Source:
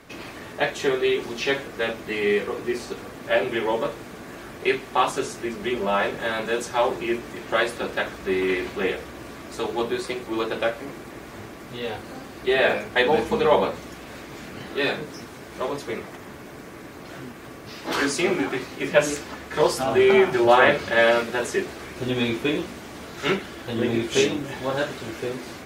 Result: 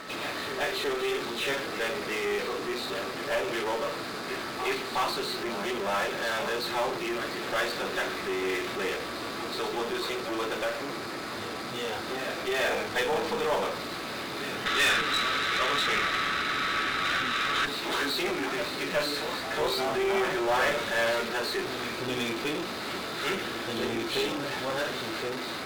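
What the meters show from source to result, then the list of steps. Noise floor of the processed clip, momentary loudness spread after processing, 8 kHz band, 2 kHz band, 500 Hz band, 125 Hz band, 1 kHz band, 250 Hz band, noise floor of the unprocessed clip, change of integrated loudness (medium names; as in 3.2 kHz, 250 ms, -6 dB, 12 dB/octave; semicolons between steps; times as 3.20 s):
-36 dBFS, 8 LU, -2.5 dB, -2.5 dB, -7.5 dB, -8.0 dB, -3.5 dB, -7.0 dB, -41 dBFS, -5.5 dB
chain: knee-point frequency compression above 3.5 kHz 4:1; in parallel at -10 dB: fuzz box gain 43 dB, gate -48 dBFS; on the sum: high-pass 81 Hz; bass shelf 270 Hz -7.5 dB; on a send: reverse echo 368 ms -9 dB; on the sum: whistle 1.3 kHz -38 dBFS; peaking EQ 1.3 kHz +2 dB; time-frequency box 14.66–17.65 s, 1.1–4.1 kHz +12 dB; valve stage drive 12 dB, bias 0.5; trim -8 dB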